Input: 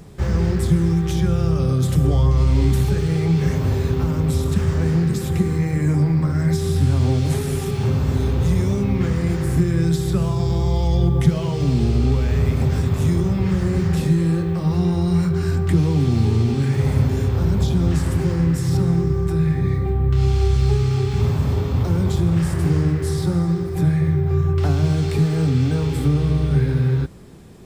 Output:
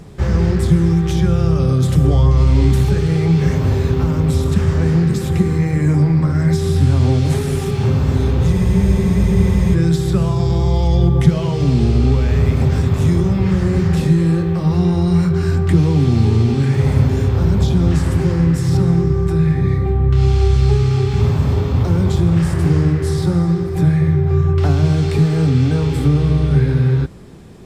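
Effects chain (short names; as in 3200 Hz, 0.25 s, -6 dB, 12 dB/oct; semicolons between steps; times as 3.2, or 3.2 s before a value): high shelf 9500 Hz -8 dB; spectral freeze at 8.55, 1.19 s; gain +4 dB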